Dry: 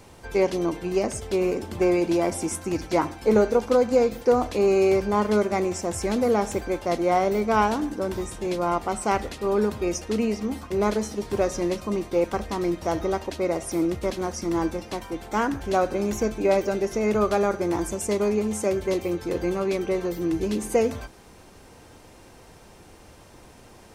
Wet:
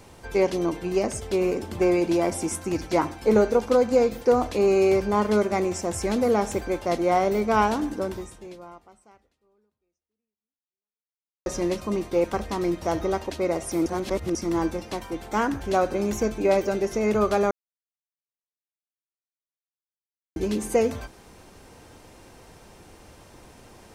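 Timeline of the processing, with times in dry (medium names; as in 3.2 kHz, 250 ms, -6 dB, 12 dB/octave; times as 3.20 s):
8.01–11.46 s: fade out exponential
13.86–14.35 s: reverse
17.51–20.36 s: mute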